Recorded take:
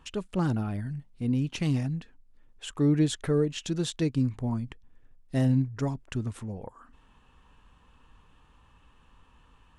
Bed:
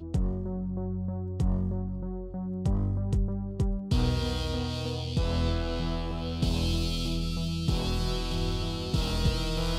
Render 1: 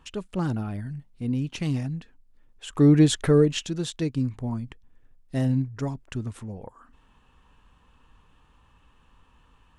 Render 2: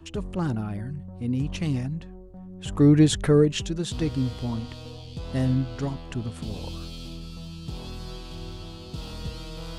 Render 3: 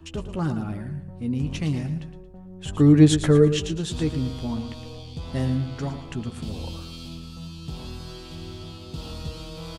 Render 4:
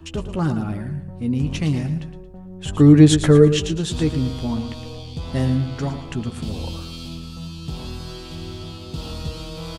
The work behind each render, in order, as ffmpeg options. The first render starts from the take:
-filter_complex "[0:a]asplit=3[a][b][c];[a]afade=t=out:st=2.72:d=0.02[d];[b]acontrast=86,afade=t=in:st=2.72:d=0.02,afade=t=out:st=3.62:d=0.02[e];[c]afade=t=in:st=3.62:d=0.02[f];[d][e][f]amix=inputs=3:normalize=0"
-filter_complex "[1:a]volume=-8dB[a];[0:a][a]amix=inputs=2:normalize=0"
-filter_complex "[0:a]asplit=2[a][b];[b]adelay=13,volume=-9dB[c];[a][c]amix=inputs=2:normalize=0,aecho=1:1:113|226|339|452:0.299|0.102|0.0345|0.0117"
-af "volume=4.5dB,alimiter=limit=-1dB:level=0:latency=1"

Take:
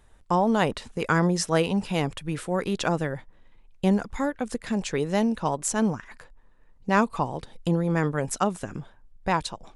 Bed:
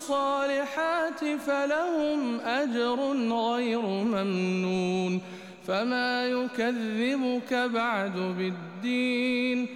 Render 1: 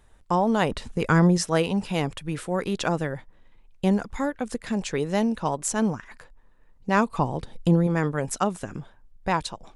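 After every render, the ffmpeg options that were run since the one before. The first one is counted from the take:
-filter_complex "[0:a]asettb=1/sr,asplit=3[a][b][c];[a]atrim=end=0.714[d];[b]atrim=start=0.71:end=1.38,asetpts=PTS-STARTPTS,afade=t=in:d=0.004:c=qsin,afade=t=out:st=0.666:d=0.004:c=qsin,lowshelf=f=230:g=8.5[e];[c]atrim=start=1.376[f];[d][e]acrossfade=d=0.004:c1=hsin:c2=qsin[g];[g][f]acrossfade=d=0.004:c1=qsin:c2=hsin,asettb=1/sr,asplit=3[h][i][j];[h]atrim=end=7.184[k];[i]atrim=start=7.18:end=7.87,asetpts=PTS-STARTPTS,afade=t=in:d=0.004:c=qsin,afade=t=out:st=0.686:d=0.004:c=qsin,lowshelf=f=410:g=6[l];[j]atrim=start=7.866[m];[k][l]acrossfade=d=0.004:c1=hsin:c2=qsin[n];[n][m]acrossfade=d=0.004:c1=qsin:c2=hsin"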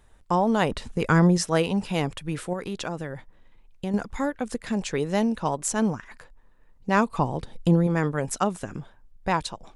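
-filter_complex "[0:a]asettb=1/sr,asplit=3[a][b][c];[a]atrim=end=2.534[d];[b]atrim=start=2.53:end=3.94,asetpts=PTS-STARTPTS,afade=t=in:d=0.004:c=qsin,afade=t=out:st=1.406:d=0.004:c=qsin,acompressor=threshold=-31dB:ratio=2:attack=3.2:release=140:knee=1:detection=peak[e];[c]atrim=start=3.936[f];[d][e]acrossfade=d=0.004:c1=hsin:c2=qsin[g];[g][f]acrossfade=d=0.004:c1=qsin:c2=hsin"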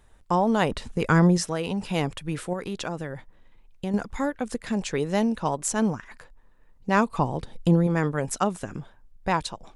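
-filter_complex "[0:a]asettb=1/sr,asplit=3[a][b][c];[a]atrim=end=1.374[d];[b]atrim=start=1.37:end=1.91,asetpts=PTS-STARTPTS,afade=t=in:d=0.004:c=qsin,afade=t=out:st=0.536:d=0.004:c=qsin,acompressor=threshold=-23dB:ratio=4:attack=3.2:release=140:knee=1:detection=peak[e];[c]atrim=start=1.906[f];[d][e]acrossfade=d=0.004:c1=hsin:c2=qsin[g];[g][f]acrossfade=d=0.004:c1=qsin:c2=hsin"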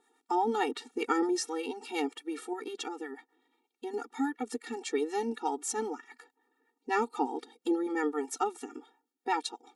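-filter_complex "[0:a]acrossover=split=760[a][b];[a]aeval=exprs='val(0)*(1-0.5/2+0.5/2*cos(2*PI*8.3*n/s))':c=same[c];[b]aeval=exprs='val(0)*(1-0.5/2-0.5/2*cos(2*PI*8.3*n/s))':c=same[d];[c][d]amix=inputs=2:normalize=0,afftfilt=real='re*eq(mod(floor(b*sr/1024/240),2),1)':imag='im*eq(mod(floor(b*sr/1024/240),2),1)':win_size=1024:overlap=0.75"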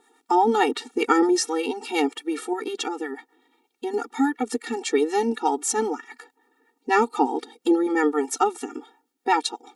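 -af "volume=9.5dB"

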